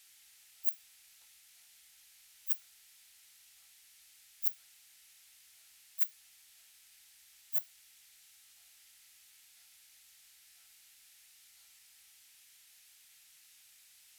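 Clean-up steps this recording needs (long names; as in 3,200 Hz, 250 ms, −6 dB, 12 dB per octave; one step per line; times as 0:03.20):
clipped peaks rebuilt −10.5 dBFS
noise reduction from a noise print 30 dB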